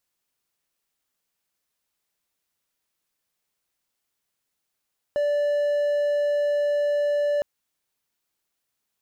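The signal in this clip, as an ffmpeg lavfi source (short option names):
-f lavfi -i "aevalsrc='0.126*(1-4*abs(mod(583*t+0.25,1)-0.5))':d=2.26:s=44100"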